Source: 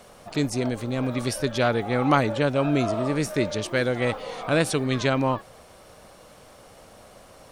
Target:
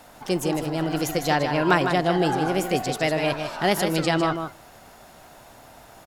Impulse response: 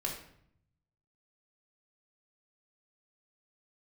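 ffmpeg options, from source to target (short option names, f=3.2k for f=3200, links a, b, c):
-filter_complex "[0:a]asetrate=54684,aresample=44100,aecho=1:1:154:0.422,asplit=2[a][b];[1:a]atrim=start_sample=2205[c];[b][c]afir=irnorm=-1:irlink=0,volume=-24dB[d];[a][d]amix=inputs=2:normalize=0"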